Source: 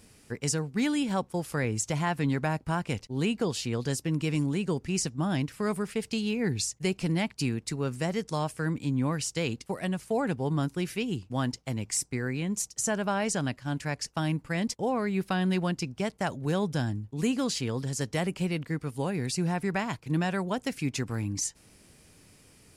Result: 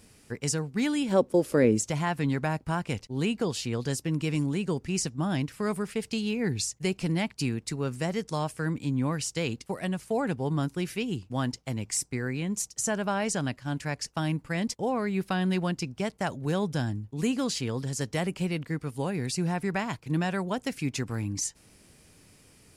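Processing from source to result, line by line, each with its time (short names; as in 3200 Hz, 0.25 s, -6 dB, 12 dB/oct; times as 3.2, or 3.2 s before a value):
1.12–1.86 spectral gain 210–640 Hz +11 dB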